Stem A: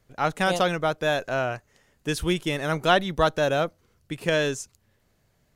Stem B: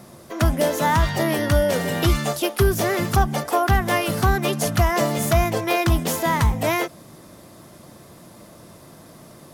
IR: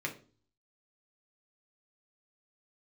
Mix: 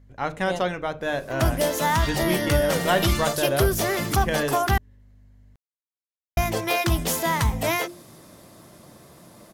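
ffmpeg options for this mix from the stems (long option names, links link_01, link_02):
-filter_complex "[0:a]highshelf=frequency=4100:gain=-6,aeval=exprs='val(0)+0.00355*(sin(2*PI*50*n/s)+sin(2*PI*2*50*n/s)/2+sin(2*PI*3*50*n/s)/3+sin(2*PI*4*50*n/s)/4+sin(2*PI*5*50*n/s)/5)':channel_layout=same,volume=-4dB,asplit=2[link_01][link_02];[link_02]volume=-8dB[link_03];[1:a]bandreject=frequency=50:width_type=h:width=6,bandreject=frequency=100:width_type=h:width=6,bandreject=frequency=150:width_type=h:width=6,bandreject=frequency=200:width_type=h:width=6,bandreject=frequency=250:width_type=h:width=6,bandreject=frequency=300:width_type=h:width=6,bandreject=frequency=350:width_type=h:width=6,adynamicequalizer=threshold=0.02:dfrequency=2100:dqfactor=0.7:tfrequency=2100:tqfactor=0.7:attack=5:release=100:ratio=0.375:range=2:mode=boostabove:tftype=highshelf,adelay=1000,volume=-3dB,asplit=3[link_04][link_05][link_06];[link_04]atrim=end=4.78,asetpts=PTS-STARTPTS,afade=type=out:start_time=4.776:duration=0.004:curve=hsin[link_07];[link_05]atrim=start=4.78:end=6.37,asetpts=PTS-STARTPTS,volume=0[link_08];[link_06]atrim=start=6.37,asetpts=PTS-STARTPTS,afade=type=in:duration=0.004:curve=hsin[link_09];[link_07][link_08][link_09]concat=n=3:v=0:a=1[link_10];[2:a]atrim=start_sample=2205[link_11];[link_03][link_11]afir=irnorm=-1:irlink=0[link_12];[link_01][link_10][link_12]amix=inputs=3:normalize=0"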